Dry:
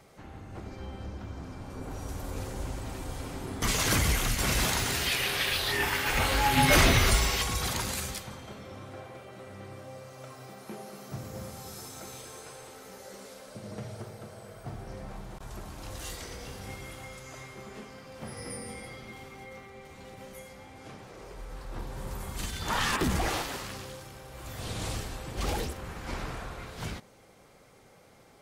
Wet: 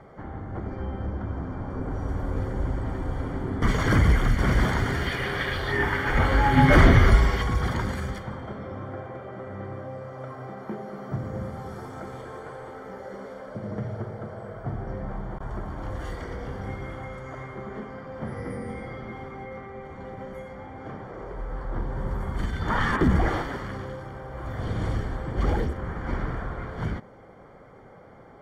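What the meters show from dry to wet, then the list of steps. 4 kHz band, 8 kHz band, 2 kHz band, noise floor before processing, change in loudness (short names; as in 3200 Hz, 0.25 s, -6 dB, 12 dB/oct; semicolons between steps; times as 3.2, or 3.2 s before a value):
-7.0 dB, -14.5 dB, +2.5 dB, -57 dBFS, +2.5 dB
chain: dynamic EQ 810 Hz, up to -6 dB, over -46 dBFS, Q 0.77; polynomial smoothing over 41 samples; gain +9 dB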